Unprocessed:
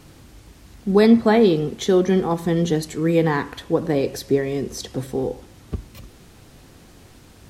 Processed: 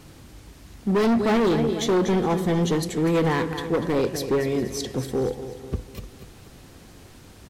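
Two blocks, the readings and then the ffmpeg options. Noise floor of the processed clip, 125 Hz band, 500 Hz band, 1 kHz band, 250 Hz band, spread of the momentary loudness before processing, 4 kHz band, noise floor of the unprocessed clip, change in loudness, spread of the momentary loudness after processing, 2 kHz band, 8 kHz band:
-48 dBFS, -2.0 dB, -3.5 dB, -1.0 dB, -3.5 dB, 17 LU, -1.0 dB, -48 dBFS, -3.5 dB, 13 LU, -1.5 dB, +0.5 dB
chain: -filter_complex "[0:a]asplit=2[s0][s1];[s1]aecho=0:1:243|486|729|972|1215:0.251|0.113|0.0509|0.0229|0.0103[s2];[s0][s2]amix=inputs=2:normalize=0,asoftclip=type=hard:threshold=0.133,asplit=2[s3][s4];[s4]aecho=0:1:418:0.0794[s5];[s3][s5]amix=inputs=2:normalize=0"

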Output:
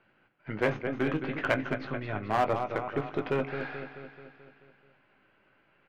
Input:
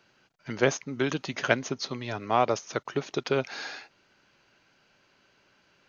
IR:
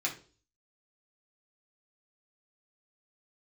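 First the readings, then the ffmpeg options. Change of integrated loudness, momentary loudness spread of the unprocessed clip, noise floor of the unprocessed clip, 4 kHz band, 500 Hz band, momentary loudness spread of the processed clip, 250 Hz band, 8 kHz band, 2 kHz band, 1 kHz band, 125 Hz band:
-2.0 dB, 12 LU, -66 dBFS, -9.5 dB, -2.5 dB, 13 LU, -0.5 dB, no reading, -2.0 dB, -1.5 dB, 0.0 dB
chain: -filter_complex "[0:a]aeval=exprs='if(lt(val(0),0),0.708*val(0),val(0))':c=same,lowpass=f=2600:w=0.5412,lowpass=f=2600:w=1.3066,asplit=2[s0][s1];[s1]adelay=19,volume=0.376[s2];[s0][s2]amix=inputs=2:normalize=0,aecho=1:1:217|434|651|868|1085|1302|1519:0.335|0.194|0.113|0.0654|0.0379|0.022|0.0128,asplit=2[s3][s4];[1:a]atrim=start_sample=2205,asetrate=41454,aresample=44100,lowshelf=f=360:g=8.5[s5];[s4][s5]afir=irnorm=-1:irlink=0,volume=0.119[s6];[s3][s6]amix=inputs=2:normalize=0,aeval=exprs='clip(val(0),-1,0.106)':c=same,volume=0.841"

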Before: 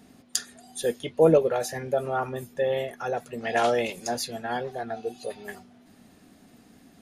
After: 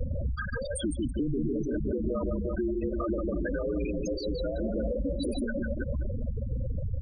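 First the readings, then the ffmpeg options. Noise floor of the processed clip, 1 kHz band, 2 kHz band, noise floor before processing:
-35 dBFS, -15.0 dB, -6.0 dB, -56 dBFS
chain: -filter_complex "[0:a]aeval=exprs='val(0)+0.5*0.0562*sgn(val(0))':c=same,aecho=1:1:150|322.5|520.9|749|1011:0.631|0.398|0.251|0.158|0.1,acrossover=split=98|290|3100[s0][s1][s2][s3];[s0]acompressor=threshold=0.00708:ratio=4[s4];[s1]acompressor=threshold=0.0355:ratio=4[s5];[s2]acompressor=threshold=0.0447:ratio=4[s6];[s3]acompressor=threshold=0.0355:ratio=4[s7];[s4][s5][s6][s7]amix=inputs=4:normalize=0,alimiter=limit=0.0944:level=0:latency=1:release=34,acompressor=threshold=0.0282:ratio=8,afreqshift=-180,afftfilt=real='re*gte(hypot(re,im),0.0501)':imag='im*gte(hypot(re,im),0.0501)':win_size=1024:overlap=0.75,volume=2.11"

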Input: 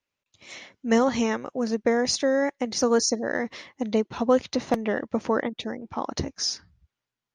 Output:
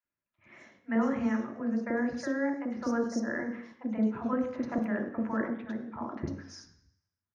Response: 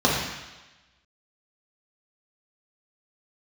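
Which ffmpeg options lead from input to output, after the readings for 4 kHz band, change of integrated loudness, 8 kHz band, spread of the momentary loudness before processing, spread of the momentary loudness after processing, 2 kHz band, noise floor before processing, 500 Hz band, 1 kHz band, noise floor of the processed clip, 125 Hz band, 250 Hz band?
-22.5 dB, -6.5 dB, -21.0 dB, 12 LU, 10 LU, -5.5 dB, under -85 dBFS, -11.0 dB, -8.5 dB, under -85 dBFS, -3.0 dB, -3.0 dB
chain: -filter_complex "[0:a]highshelf=f=2500:t=q:w=1.5:g=-13,acrossover=split=640|3100[s0][s1][s2];[s0]adelay=40[s3];[s2]adelay=100[s4];[s3][s1][s4]amix=inputs=3:normalize=0,asplit=2[s5][s6];[1:a]atrim=start_sample=2205,asetrate=66150,aresample=44100,lowpass=6800[s7];[s6][s7]afir=irnorm=-1:irlink=0,volume=0.0944[s8];[s5][s8]amix=inputs=2:normalize=0,volume=0.422"

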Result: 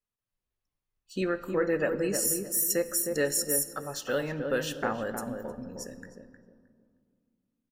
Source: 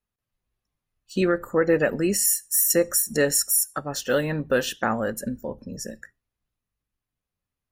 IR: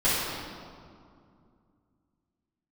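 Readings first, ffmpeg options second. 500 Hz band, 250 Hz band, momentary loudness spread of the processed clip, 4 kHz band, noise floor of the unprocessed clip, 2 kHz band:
-5.5 dB, -6.5 dB, 14 LU, -6.5 dB, under -85 dBFS, -6.0 dB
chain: -filter_complex "[0:a]equalizer=f=74:t=o:w=2.6:g=-3.5,asplit=2[s0][s1];[s1]adelay=311,lowpass=f=880:p=1,volume=0.631,asplit=2[s2][s3];[s3]adelay=311,lowpass=f=880:p=1,volume=0.31,asplit=2[s4][s5];[s5]adelay=311,lowpass=f=880:p=1,volume=0.31,asplit=2[s6][s7];[s7]adelay=311,lowpass=f=880:p=1,volume=0.31[s8];[s0][s2][s4][s6][s8]amix=inputs=5:normalize=0,asplit=2[s9][s10];[1:a]atrim=start_sample=2205[s11];[s10][s11]afir=irnorm=-1:irlink=0,volume=0.0398[s12];[s9][s12]amix=inputs=2:normalize=0,volume=0.447"

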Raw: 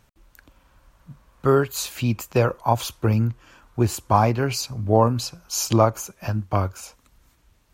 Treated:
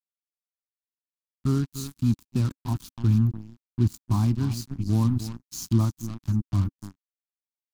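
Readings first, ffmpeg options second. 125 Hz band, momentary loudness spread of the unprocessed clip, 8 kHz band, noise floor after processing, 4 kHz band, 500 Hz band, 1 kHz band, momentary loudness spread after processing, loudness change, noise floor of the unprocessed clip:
0.0 dB, 10 LU, -11.0 dB, under -85 dBFS, -11.0 dB, -19.0 dB, -18.0 dB, 11 LU, -4.0 dB, -62 dBFS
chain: -filter_complex "[0:a]asplit=2[s0][s1];[s1]adelay=291.5,volume=0.251,highshelf=f=4000:g=-6.56[s2];[s0][s2]amix=inputs=2:normalize=0,acrusher=bits=3:mix=0:aa=0.5,firequalizer=gain_entry='entry(270,0);entry(490,-29);entry(1000,-16);entry(2000,-21);entry(4100,-11)':delay=0.05:min_phase=1"

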